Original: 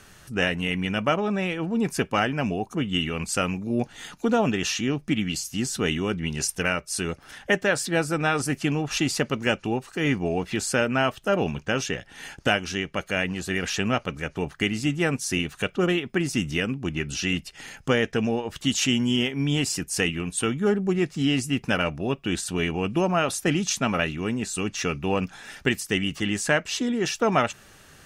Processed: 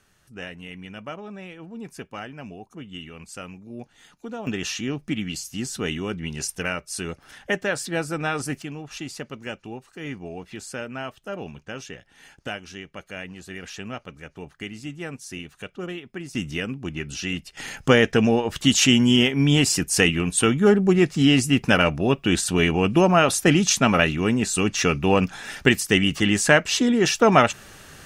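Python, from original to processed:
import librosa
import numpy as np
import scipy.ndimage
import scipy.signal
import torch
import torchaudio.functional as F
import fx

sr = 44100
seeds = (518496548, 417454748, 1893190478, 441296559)

y = fx.gain(x, sr, db=fx.steps((0.0, -12.5), (4.47, -2.5), (8.62, -10.0), (16.35, -2.5), (17.57, 6.0)))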